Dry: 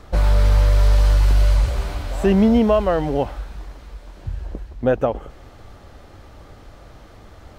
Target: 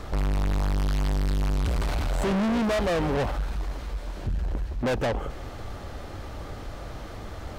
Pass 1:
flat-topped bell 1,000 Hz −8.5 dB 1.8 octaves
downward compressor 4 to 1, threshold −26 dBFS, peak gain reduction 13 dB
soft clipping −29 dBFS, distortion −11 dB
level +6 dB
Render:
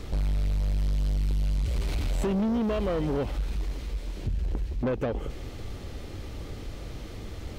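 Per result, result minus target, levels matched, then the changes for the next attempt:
downward compressor: peak gain reduction +13 dB; 1,000 Hz band −4.5 dB
remove: downward compressor 4 to 1, threshold −26 dBFS, peak gain reduction 13 dB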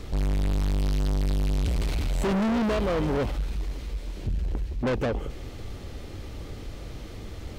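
1,000 Hz band −3.0 dB
remove: flat-topped bell 1,000 Hz −8.5 dB 1.8 octaves

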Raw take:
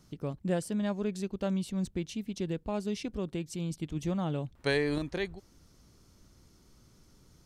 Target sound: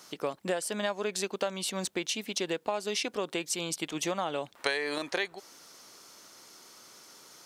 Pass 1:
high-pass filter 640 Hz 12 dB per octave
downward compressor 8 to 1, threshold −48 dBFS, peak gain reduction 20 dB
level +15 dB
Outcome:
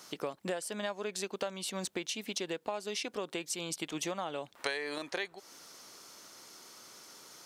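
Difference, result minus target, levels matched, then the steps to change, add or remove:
downward compressor: peak gain reduction +5 dB
change: downward compressor 8 to 1, threshold −42 dBFS, peak gain reduction 15 dB

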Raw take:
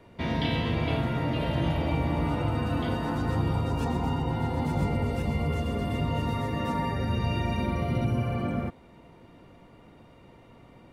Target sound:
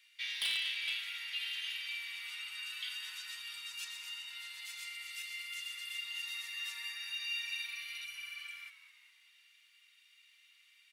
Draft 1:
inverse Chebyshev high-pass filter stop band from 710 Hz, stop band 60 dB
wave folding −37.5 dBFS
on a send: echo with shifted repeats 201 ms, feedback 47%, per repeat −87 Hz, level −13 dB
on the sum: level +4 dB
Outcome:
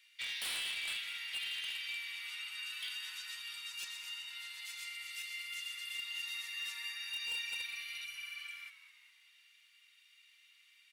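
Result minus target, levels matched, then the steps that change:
wave folding: distortion +9 dB
change: wave folding −31.5 dBFS

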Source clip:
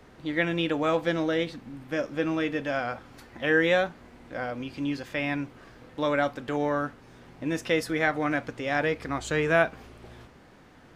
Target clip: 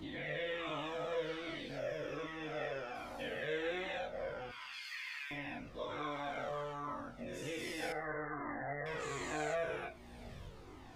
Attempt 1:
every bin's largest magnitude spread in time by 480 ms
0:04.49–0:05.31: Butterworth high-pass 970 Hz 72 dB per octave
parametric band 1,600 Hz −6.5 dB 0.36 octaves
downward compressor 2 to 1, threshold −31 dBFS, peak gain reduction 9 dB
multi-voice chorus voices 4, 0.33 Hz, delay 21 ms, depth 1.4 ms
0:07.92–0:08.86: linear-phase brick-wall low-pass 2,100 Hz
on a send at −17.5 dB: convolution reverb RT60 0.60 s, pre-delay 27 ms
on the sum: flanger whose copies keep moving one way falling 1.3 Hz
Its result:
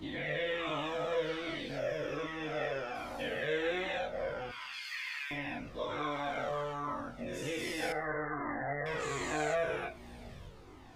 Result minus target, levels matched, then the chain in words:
downward compressor: peak gain reduction −4.5 dB
every bin's largest magnitude spread in time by 480 ms
0:04.49–0:05.31: Butterworth high-pass 970 Hz 72 dB per octave
parametric band 1,600 Hz −6.5 dB 0.36 octaves
downward compressor 2 to 1, threshold −40.5 dBFS, peak gain reduction 14 dB
multi-voice chorus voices 4, 0.33 Hz, delay 21 ms, depth 1.4 ms
0:07.92–0:08.86: linear-phase brick-wall low-pass 2,100 Hz
on a send at −17.5 dB: convolution reverb RT60 0.60 s, pre-delay 27 ms
on the sum: flanger whose copies keep moving one way falling 1.3 Hz

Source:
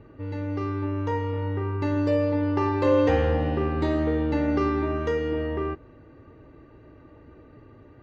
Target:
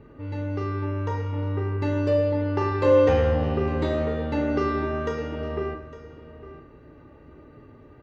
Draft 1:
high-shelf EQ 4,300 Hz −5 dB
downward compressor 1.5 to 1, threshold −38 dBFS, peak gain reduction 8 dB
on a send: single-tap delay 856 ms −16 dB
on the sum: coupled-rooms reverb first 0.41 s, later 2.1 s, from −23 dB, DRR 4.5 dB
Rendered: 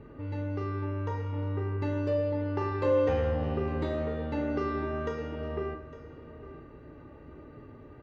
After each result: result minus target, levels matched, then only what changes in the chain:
downward compressor: peak gain reduction +8 dB; 8,000 Hz band −3.0 dB
remove: downward compressor 1.5 to 1, threshold −38 dBFS, peak gain reduction 8 dB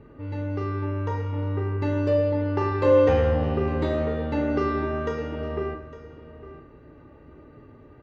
8,000 Hz band −3.5 dB
remove: high-shelf EQ 4,300 Hz −5 dB

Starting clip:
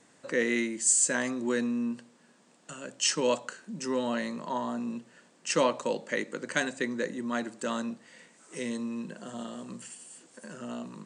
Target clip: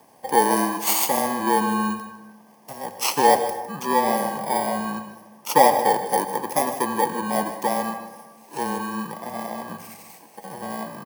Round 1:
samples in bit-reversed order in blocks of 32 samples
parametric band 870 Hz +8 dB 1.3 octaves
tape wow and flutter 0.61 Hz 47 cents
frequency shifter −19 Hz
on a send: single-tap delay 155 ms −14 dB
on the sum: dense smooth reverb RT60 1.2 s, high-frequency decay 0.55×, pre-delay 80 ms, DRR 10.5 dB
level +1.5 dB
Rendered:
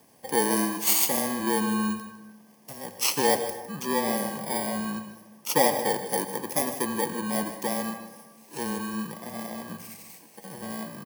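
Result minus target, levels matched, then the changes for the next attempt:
1,000 Hz band −5.5 dB
change: parametric band 870 Hz +19 dB 1.3 octaves

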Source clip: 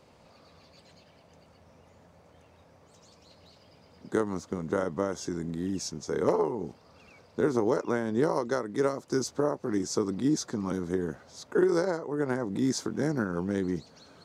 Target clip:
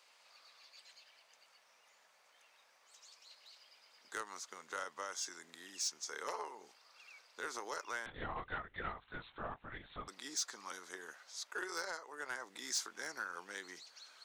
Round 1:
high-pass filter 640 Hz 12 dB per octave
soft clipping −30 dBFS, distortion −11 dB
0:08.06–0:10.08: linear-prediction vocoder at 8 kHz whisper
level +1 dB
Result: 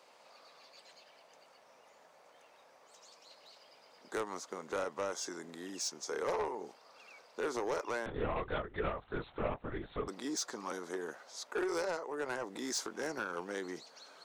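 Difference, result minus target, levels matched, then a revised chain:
500 Hz band +8.0 dB
high-pass filter 1,600 Hz 12 dB per octave
soft clipping −30 dBFS, distortion −16 dB
0:08.06–0:10.08: linear-prediction vocoder at 8 kHz whisper
level +1 dB

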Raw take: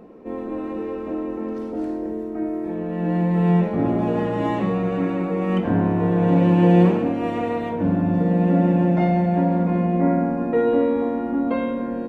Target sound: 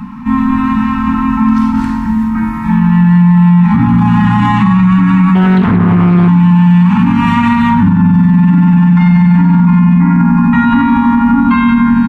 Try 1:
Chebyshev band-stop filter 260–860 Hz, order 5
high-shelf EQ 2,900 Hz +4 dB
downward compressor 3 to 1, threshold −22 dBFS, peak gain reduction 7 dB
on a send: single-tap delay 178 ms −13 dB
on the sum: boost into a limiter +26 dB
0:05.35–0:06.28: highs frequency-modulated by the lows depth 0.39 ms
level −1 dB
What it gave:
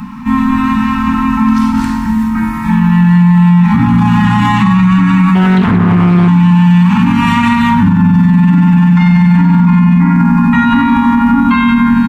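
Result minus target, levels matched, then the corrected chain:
8,000 Hz band +8.5 dB
Chebyshev band-stop filter 260–860 Hz, order 5
high-shelf EQ 2,900 Hz −6 dB
downward compressor 3 to 1, threshold −22 dBFS, peak gain reduction 7 dB
on a send: single-tap delay 178 ms −13 dB
on the sum: boost into a limiter +26 dB
0:05.35–0:06.28: highs frequency-modulated by the lows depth 0.39 ms
level −1 dB

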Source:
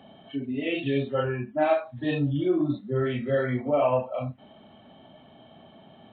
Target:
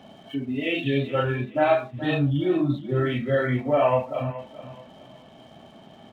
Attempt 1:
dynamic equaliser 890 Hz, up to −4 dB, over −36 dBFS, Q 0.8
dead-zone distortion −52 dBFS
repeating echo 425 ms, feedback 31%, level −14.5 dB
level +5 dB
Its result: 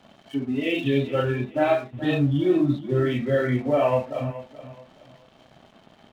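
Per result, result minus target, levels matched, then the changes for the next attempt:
dead-zone distortion: distortion +9 dB; 1,000 Hz band −3.0 dB
change: dead-zone distortion −62.5 dBFS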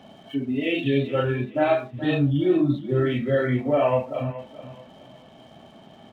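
1,000 Hz band −3.0 dB
change: dynamic equaliser 390 Hz, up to −4 dB, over −36 dBFS, Q 0.8

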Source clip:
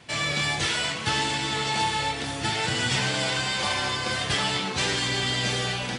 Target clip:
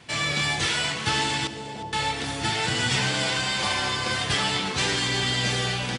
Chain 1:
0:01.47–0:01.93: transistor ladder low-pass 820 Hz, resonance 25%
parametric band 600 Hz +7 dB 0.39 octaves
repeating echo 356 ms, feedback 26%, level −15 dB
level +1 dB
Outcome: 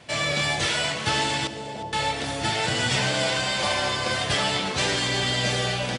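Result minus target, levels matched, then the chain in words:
500 Hz band +4.0 dB
0:01.47–0:01.93: transistor ladder low-pass 820 Hz, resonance 25%
parametric band 600 Hz −2.5 dB 0.39 octaves
repeating echo 356 ms, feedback 26%, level −15 dB
level +1 dB

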